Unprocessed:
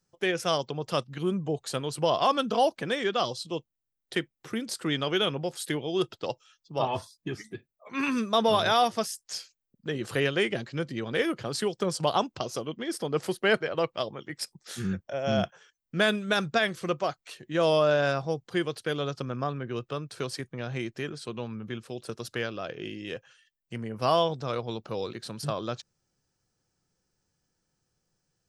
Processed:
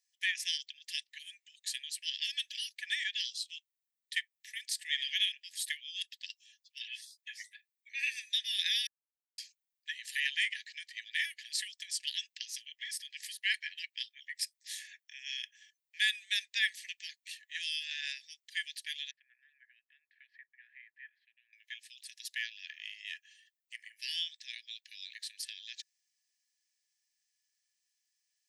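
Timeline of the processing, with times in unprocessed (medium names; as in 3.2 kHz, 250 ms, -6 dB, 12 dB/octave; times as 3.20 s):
4.84–5.32 s: flutter echo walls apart 11.2 m, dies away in 0.35 s
8.87–9.38 s: mute
19.11–21.53 s: low-pass 1.5 kHz 24 dB/octave
whole clip: Chebyshev high-pass 1.7 kHz, order 10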